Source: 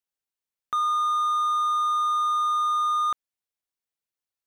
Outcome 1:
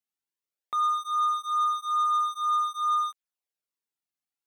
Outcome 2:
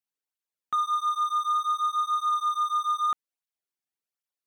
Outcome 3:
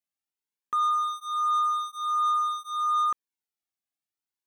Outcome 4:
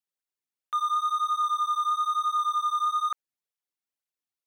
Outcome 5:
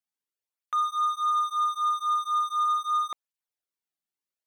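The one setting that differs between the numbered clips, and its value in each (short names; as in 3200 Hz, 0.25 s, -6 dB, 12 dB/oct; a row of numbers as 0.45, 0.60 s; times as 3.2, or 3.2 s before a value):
tape flanging out of phase, nulls at: 0.48, 1.3, 0.26, 2.1, 0.75 Hz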